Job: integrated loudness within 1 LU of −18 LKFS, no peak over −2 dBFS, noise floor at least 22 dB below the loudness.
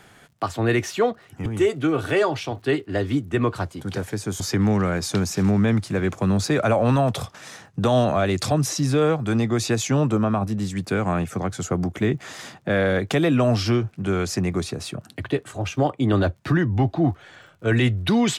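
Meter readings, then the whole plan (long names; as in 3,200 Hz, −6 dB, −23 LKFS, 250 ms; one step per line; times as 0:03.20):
crackle rate 43 per second; integrated loudness −22.5 LKFS; sample peak −10.0 dBFS; target loudness −18.0 LKFS
→ click removal
level +4.5 dB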